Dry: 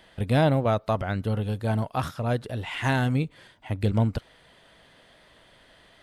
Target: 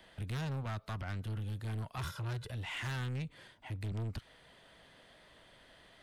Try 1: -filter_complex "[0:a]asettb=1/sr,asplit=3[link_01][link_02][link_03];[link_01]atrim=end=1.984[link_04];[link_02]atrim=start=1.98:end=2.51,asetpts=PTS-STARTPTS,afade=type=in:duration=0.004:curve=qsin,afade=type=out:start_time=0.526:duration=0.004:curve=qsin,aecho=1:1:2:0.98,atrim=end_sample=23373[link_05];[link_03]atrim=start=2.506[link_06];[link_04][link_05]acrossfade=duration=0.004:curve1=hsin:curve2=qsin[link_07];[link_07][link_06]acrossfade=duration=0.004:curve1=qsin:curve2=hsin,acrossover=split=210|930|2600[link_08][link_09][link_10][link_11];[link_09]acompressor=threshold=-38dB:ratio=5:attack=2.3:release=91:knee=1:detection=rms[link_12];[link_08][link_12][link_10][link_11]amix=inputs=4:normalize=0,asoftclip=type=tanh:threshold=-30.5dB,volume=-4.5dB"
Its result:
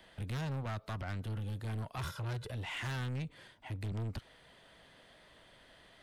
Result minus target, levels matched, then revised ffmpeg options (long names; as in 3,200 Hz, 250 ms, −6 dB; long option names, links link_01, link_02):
downward compressor: peak gain reduction −7 dB
-filter_complex "[0:a]asettb=1/sr,asplit=3[link_01][link_02][link_03];[link_01]atrim=end=1.984[link_04];[link_02]atrim=start=1.98:end=2.51,asetpts=PTS-STARTPTS,afade=type=in:duration=0.004:curve=qsin,afade=type=out:start_time=0.526:duration=0.004:curve=qsin,aecho=1:1:2:0.98,atrim=end_sample=23373[link_05];[link_03]atrim=start=2.506[link_06];[link_04][link_05]acrossfade=duration=0.004:curve1=hsin:curve2=qsin[link_07];[link_07][link_06]acrossfade=duration=0.004:curve1=qsin:curve2=hsin,acrossover=split=210|930|2600[link_08][link_09][link_10][link_11];[link_09]acompressor=threshold=-46.5dB:ratio=5:attack=2.3:release=91:knee=1:detection=rms[link_12];[link_08][link_12][link_10][link_11]amix=inputs=4:normalize=0,asoftclip=type=tanh:threshold=-30.5dB,volume=-4.5dB"